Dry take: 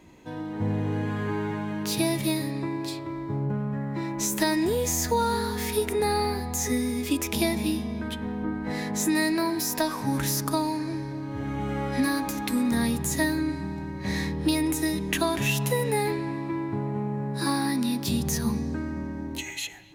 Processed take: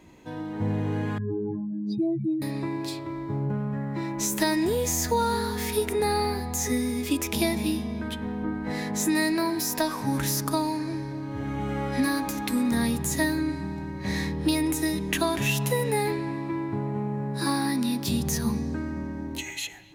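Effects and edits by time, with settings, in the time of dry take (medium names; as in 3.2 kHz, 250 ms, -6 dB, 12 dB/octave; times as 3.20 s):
1.18–2.42 s: spectral contrast enhancement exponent 3.5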